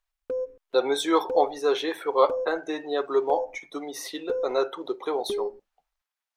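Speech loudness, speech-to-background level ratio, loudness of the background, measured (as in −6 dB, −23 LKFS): −27.0 LKFS, 6.5 dB, −33.5 LKFS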